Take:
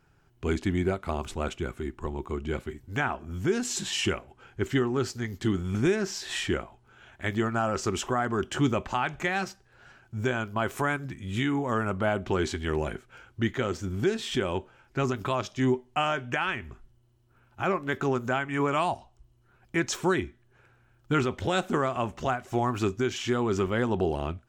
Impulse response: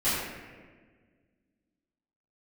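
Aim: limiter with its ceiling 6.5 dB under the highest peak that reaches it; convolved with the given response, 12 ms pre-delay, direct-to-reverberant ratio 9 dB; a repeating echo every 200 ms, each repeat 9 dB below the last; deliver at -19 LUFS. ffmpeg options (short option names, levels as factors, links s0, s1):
-filter_complex "[0:a]alimiter=limit=0.0794:level=0:latency=1,aecho=1:1:200|400|600|800:0.355|0.124|0.0435|0.0152,asplit=2[s0][s1];[1:a]atrim=start_sample=2205,adelay=12[s2];[s1][s2]afir=irnorm=-1:irlink=0,volume=0.0841[s3];[s0][s3]amix=inputs=2:normalize=0,volume=4.47"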